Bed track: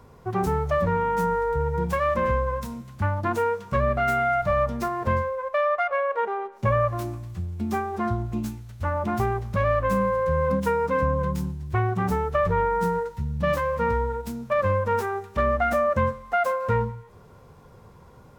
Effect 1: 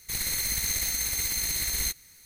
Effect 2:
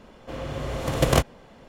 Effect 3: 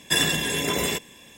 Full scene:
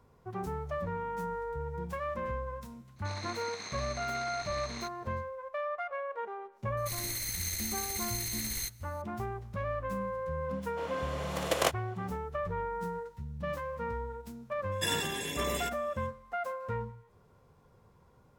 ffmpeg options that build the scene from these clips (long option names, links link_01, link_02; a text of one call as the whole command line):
ffmpeg -i bed.wav -i cue0.wav -i cue1.wav -i cue2.wav -filter_complex "[1:a]asplit=2[link_01][link_02];[0:a]volume=-12.5dB[link_03];[link_01]highpass=frequency=240:width=0.5412,highpass=frequency=240:width=1.3066,equalizer=frequency=710:width_type=q:width=4:gain=7,equalizer=frequency=1100:width_type=q:width=4:gain=9,equalizer=frequency=2000:width_type=q:width=4:gain=-6,equalizer=frequency=3100:width_type=q:width=4:gain=-8,equalizer=frequency=4600:width_type=q:width=4:gain=-6,lowpass=frequency=4600:width=0.5412,lowpass=frequency=4600:width=1.3066[link_04];[2:a]highpass=470[link_05];[link_04]atrim=end=2.25,asetpts=PTS-STARTPTS,volume=-4.5dB,afade=type=in:duration=0.004:curve=hsin,afade=type=out:start_time=2.246:duration=0.004:curve=hsin,adelay=2960[link_06];[link_02]atrim=end=2.25,asetpts=PTS-STARTPTS,volume=-7.5dB,afade=type=in:duration=0.004:curve=hsin,afade=type=out:start_time=2.246:duration=0.004:curve=hsin,adelay=6770[link_07];[link_05]atrim=end=1.68,asetpts=PTS-STARTPTS,volume=-4.5dB,afade=type=in:duration=0.004:curve=hsin,afade=type=out:start_time=1.676:duration=0.004:curve=hsin,adelay=10490[link_08];[3:a]atrim=end=1.37,asetpts=PTS-STARTPTS,volume=-11dB,afade=type=in:duration=0.02,afade=type=out:start_time=1.35:duration=0.02,adelay=14710[link_09];[link_03][link_06][link_07][link_08][link_09]amix=inputs=5:normalize=0" out.wav